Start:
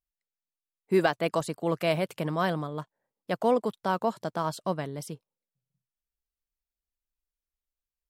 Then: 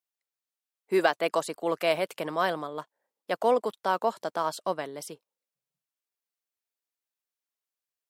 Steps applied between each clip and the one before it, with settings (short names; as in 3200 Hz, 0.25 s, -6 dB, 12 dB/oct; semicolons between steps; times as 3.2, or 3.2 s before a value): HPF 370 Hz 12 dB/oct; gain +2 dB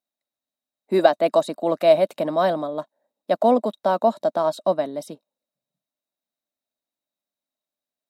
small resonant body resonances 240/600/3800 Hz, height 17 dB, ringing for 25 ms; gain -3 dB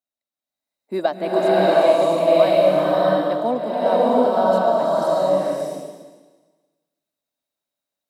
bloom reverb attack 0.68 s, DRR -9 dB; gain -5.5 dB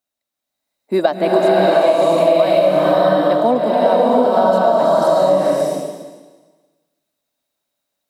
compressor, threshold -18 dBFS, peak gain reduction 9 dB; gain +8.5 dB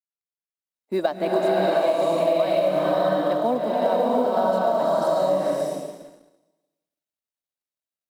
G.711 law mismatch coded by A; gain -7.5 dB